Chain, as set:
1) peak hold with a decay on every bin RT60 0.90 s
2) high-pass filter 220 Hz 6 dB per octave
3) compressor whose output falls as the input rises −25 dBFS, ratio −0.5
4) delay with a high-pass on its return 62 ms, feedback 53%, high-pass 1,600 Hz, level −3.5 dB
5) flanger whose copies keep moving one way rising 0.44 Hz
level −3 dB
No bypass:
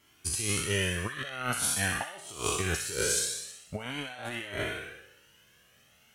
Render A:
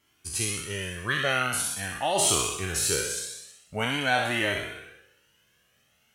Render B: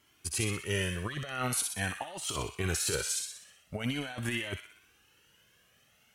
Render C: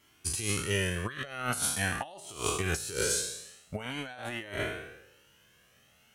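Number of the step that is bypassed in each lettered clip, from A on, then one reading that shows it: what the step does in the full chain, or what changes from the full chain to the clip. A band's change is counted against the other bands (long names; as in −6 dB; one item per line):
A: 3, 1 kHz band +4.0 dB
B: 1, 250 Hz band +3.5 dB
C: 4, 4 kHz band −2.0 dB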